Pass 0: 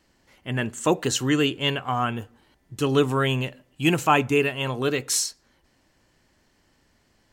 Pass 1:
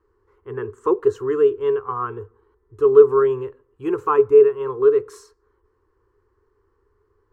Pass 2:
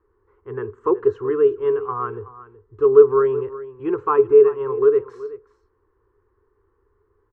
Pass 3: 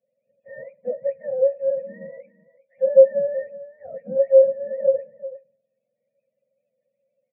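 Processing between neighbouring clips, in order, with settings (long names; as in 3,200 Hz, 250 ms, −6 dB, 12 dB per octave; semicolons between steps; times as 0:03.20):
drawn EQ curve 100 Hz 0 dB, 160 Hz −22 dB, 280 Hz −14 dB, 420 Hz +13 dB, 630 Hz −23 dB, 1,100 Hz +4 dB, 2,200 Hz −20 dB, 3,200 Hz −26 dB; level +1.5 dB
low-pass filter 2,300 Hz 12 dB per octave; single-tap delay 375 ms −16 dB
frequency axis turned over on the octave scale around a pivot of 480 Hz; formant resonators in series e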